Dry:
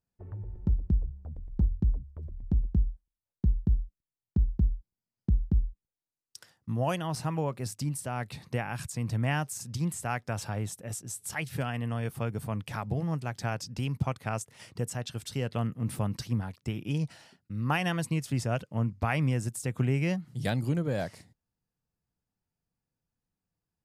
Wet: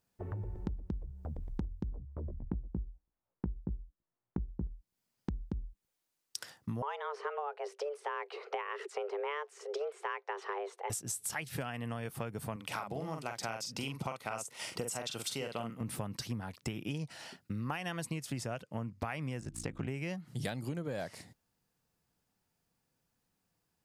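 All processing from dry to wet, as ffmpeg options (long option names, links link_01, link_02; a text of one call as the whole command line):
ffmpeg -i in.wav -filter_complex "[0:a]asettb=1/sr,asplit=3[link_01][link_02][link_03];[link_01]atrim=end=1.914[link_04];[link_02]atrim=start=1.91:end=4.67,asetpts=PTS-STARTPTS,afade=type=in:duration=0.004:curve=qsin,afade=type=out:start_time=2.756:duration=0.004:curve=qsin,lowpass=1100,asplit=2[link_05][link_06];[link_06]adelay=17,volume=-3.5dB[link_07];[link_05][link_07]amix=inputs=2:normalize=0,atrim=end_sample=121716[link_08];[link_03]atrim=start=4.666[link_09];[link_04][link_08]acrossfade=duration=0.004:curve1=hsin:curve2=qsin[link_10];[link_10][link_09]acrossfade=duration=0.004:curve1=qsin:curve2=hsin,asettb=1/sr,asplit=3[link_11][link_12][link_13];[link_11]atrim=end=6.824[link_14];[link_12]atrim=start=6.82:end=10.9,asetpts=PTS-STARTPTS,afade=type=in:duration=0.004:curve=qsin,afade=type=out:start_time=4.076:duration=0.004:curve=qsin,afreqshift=290,highpass=560,lowpass=2300[link_15];[link_13]atrim=start=10.896[link_16];[link_14][link_15]acrossfade=duration=0.004:curve1=hsin:curve2=qsin[link_17];[link_17][link_16]acrossfade=duration=0.004:curve1=qsin:curve2=hsin,asettb=1/sr,asplit=3[link_18][link_19][link_20];[link_18]atrim=end=12.564[link_21];[link_19]atrim=start=12.56:end=15.81,asetpts=PTS-STARTPTS,afade=type=in:duration=0.004:curve=qsin,afade=type=out:start_time=3.246:duration=0.004:curve=qsin,highpass=frequency=330:poles=1,bandreject=frequency=1700:width=7.8,asplit=2[link_22][link_23];[link_23]adelay=44,volume=-5dB[link_24];[link_22][link_24]amix=inputs=2:normalize=0,atrim=end_sample=143325[link_25];[link_20]atrim=start=15.806[link_26];[link_21][link_25]acrossfade=duration=0.004:curve1=hsin:curve2=qsin[link_27];[link_27][link_26]acrossfade=duration=0.004:curve1=qsin:curve2=hsin,asettb=1/sr,asplit=3[link_28][link_29][link_30];[link_28]atrim=end=19.404[link_31];[link_29]atrim=start=19.4:end=19.88,asetpts=PTS-STARTPTS,afade=type=in:duration=0.004:curve=qsin,afade=type=out:start_time=0.476:duration=0.004:curve=qsin,adynamicsmooth=sensitivity=4.5:basefreq=5400,aeval=exprs='val(0)+0.00891*(sin(2*PI*60*n/s)+sin(2*PI*2*60*n/s)/2+sin(2*PI*3*60*n/s)/3+sin(2*PI*4*60*n/s)/4+sin(2*PI*5*60*n/s)/5)':channel_layout=same,aeval=exprs='val(0)*sin(2*PI*26*n/s)':channel_layout=same[link_32];[link_30]atrim=start=19.876[link_33];[link_31][link_32]acrossfade=duration=0.004:curve1=hsin:curve2=qsin[link_34];[link_34][link_33]acrossfade=duration=0.004:curve1=qsin:curve2=hsin,lowshelf=frequency=170:gain=-10,acompressor=threshold=-45dB:ratio=8,volume=10dB" out.wav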